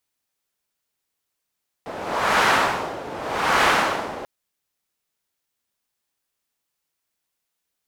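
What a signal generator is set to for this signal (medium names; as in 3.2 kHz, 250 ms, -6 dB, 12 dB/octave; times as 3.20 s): wind-like swept noise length 2.39 s, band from 590 Hz, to 1.3 kHz, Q 1.2, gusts 2, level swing 16 dB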